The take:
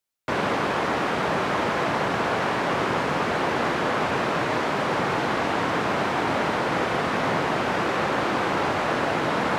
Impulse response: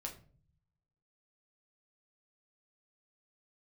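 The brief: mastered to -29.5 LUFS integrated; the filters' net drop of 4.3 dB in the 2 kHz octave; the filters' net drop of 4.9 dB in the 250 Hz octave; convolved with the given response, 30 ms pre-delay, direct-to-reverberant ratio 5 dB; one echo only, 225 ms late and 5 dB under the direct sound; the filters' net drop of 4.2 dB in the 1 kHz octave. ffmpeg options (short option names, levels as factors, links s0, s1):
-filter_complex "[0:a]equalizer=f=250:t=o:g=-6.5,equalizer=f=1000:t=o:g=-4,equalizer=f=2000:t=o:g=-4,aecho=1:1:225:0.562,asplit=2[s0][s1];[1:a]atrim=start_sample=2205,adelay=30[s2];[s1][s2]afir=irnorm=-1:irlink=0,volume=0.708[s3];[s0][s3]amix=inputs=2:normalize=0,volume=0.631"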